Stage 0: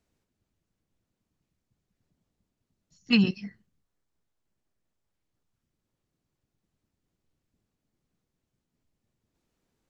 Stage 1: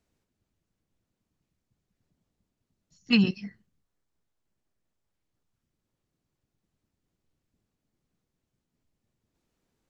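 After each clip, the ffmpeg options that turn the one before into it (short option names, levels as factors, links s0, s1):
-af anull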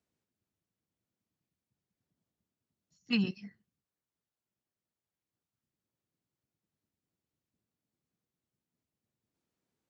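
-af "highpass=93,volume=0.398"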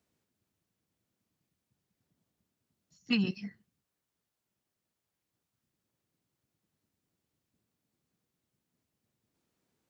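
-af "acompressor=threshold=0.0282:ratio=6,volume=2"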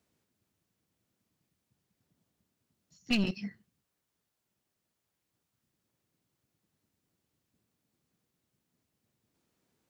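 -af "aeval=exprs='clip(val(0),-1,0.0237)':c=same,volume=1.33"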